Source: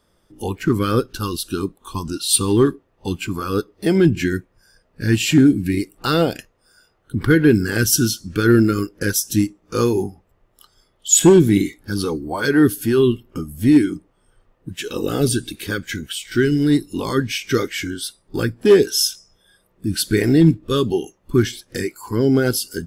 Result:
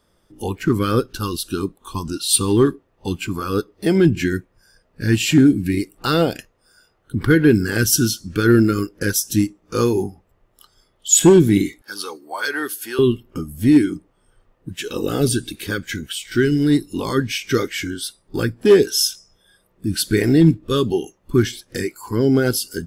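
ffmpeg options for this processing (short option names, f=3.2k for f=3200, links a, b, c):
-filter_complex "[0:a]asettb=1/sr,asplit=3[a][b][c];[a]atrim=end=11.824[d];[b]atrim=start=11.82:end=12.99,asetpts=PTS-STARTPTS,afade=t=in:d=0.004:c=qsin,afade=t=out:st=1.166:d=0.004:c=qsin,highpass=750[e];[c]atrim=start=12.986[f];[d][e]acrossfade=d=0.004:c1=hsin:c2=qsin[g];[g][f]acrossfade=d=0.004:c1=qsin:c2=hsin"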